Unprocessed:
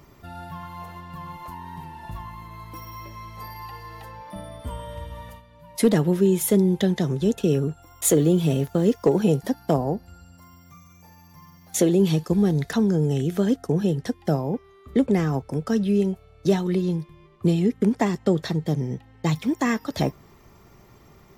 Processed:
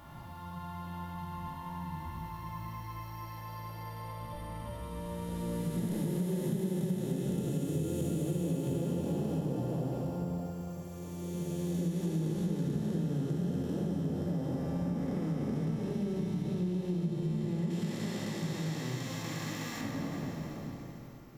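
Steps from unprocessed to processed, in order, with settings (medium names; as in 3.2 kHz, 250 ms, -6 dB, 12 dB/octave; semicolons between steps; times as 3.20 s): spectral blur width 1260 ms; 17.70–19.81 s: tilt shelf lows -7.5 dB; simulated room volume 1600 m³, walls mixed, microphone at 2.4 m; compression 4:1, threshold -23 dBFS, peak gain reduction 9.5 dB; treble shelf 7.8 kHz +5.5 dB; trim -7 dB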